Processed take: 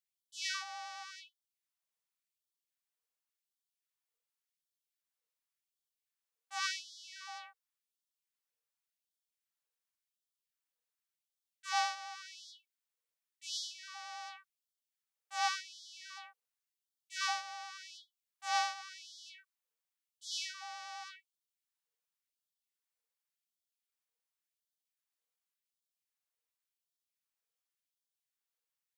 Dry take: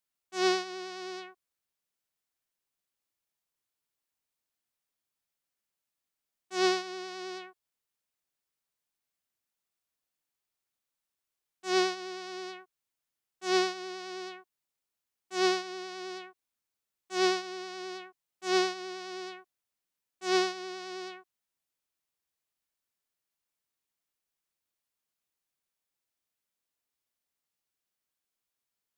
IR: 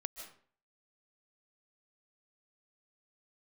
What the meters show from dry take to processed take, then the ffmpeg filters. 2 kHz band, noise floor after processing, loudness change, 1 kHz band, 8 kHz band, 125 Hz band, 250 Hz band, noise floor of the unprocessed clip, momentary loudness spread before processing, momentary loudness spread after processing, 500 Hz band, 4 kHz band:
-5.0 dB, under -85 dBFS, -7.5 dB, -4.0 dB, -2.5 dB, no reading, under -40 dB, under -85 dBFS, 16 LU, 18 LU, -36.0 dB, -5.0 dB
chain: -af "asubboost=boost=5:cutoff=78,afreqshift=420,afftfilt=real='re*gte(b*sr/1024,430*pow(3100/430,0.5+0.5*sin(2*PI*0.9*pts/sr)))':imag='im*gte(b*sr/1024,430*pow(3100/430,0.5+0.5*sin(2*PI*0.9*pts/sr)))':win_size=1024:overlap=0.75,volume=0.562"

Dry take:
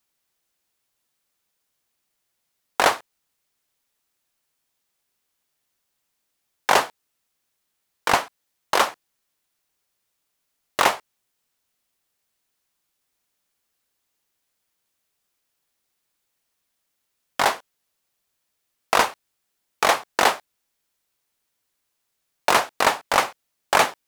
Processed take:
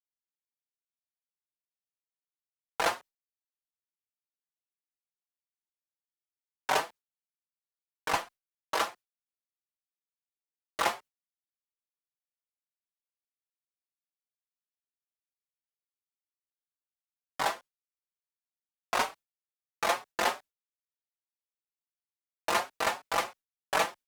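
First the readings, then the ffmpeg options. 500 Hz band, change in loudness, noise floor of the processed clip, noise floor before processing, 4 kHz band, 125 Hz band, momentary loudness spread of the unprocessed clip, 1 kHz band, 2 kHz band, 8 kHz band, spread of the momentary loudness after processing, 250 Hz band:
-9.5 dB, -10.0 dB, under -85 dBFS, -77 dBFS, -10.0 dB, -10.0 dB, 13 LU, -10.0 dB, -10.0 dB, -10.0 dB, 14 LU, -10.0 dB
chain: -filter_complex "[0:a]agate=range=0.0224:threshold=0.02:ratio=3:detection=peak,asplit=2[s0][s1];[s1]adelay=5,afreqshift=3[s2];[s0][s2]amix=inputs=2:normalize=1,volume=0.447"

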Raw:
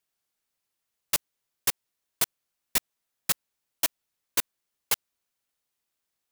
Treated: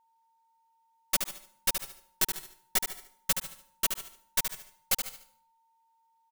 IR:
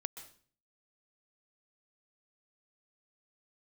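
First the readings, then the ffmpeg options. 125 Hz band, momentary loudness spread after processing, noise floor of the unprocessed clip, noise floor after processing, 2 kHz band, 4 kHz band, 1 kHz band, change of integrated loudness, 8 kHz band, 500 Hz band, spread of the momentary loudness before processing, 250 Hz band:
-0.5 dB, 9 LU, -83 dBFS, -70 dBFS, -1.0 dB, -1.0 dB, -1.0 dB, -2.0 dB, -1.0 dB, -0.5 dB, 1 LU, -0.5 dB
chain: -filter_complex "[0:a]aeval=exprs='0.355*(cos(1*acos(clip(val(0)/0.355,-1,1)))-cos(1*PI/2))+0.0501*(cos(3*acos(clip(val(0)/0.355,-1,1)))-cos(3*PI/2))+0.178*(cos(6*acos(clip(val(0)/0.355,-1,1)))-cos(6*PI/2))+0.158*(cos(8*acos(clip(val(0)/0.355,-1,1)))-cos(8*PI/2))':c=same,aecho=1:1:5.3:0.65,aecho=1:1:73|146|219|292:0.447|0.156|0.0547|0.0192,asplit=2[s0][s1];[1:a]atrim=start_sample=2205[s2];[s1][s2]afir=irnorm=-1:irlink=0,volume=0.668[s3];[s0][s3]amix=inputs=2:normalize=0,aeval=exprs='val(0)+0.000891*sin(2*PI*910*n/s)':c=same,volume=0.473"

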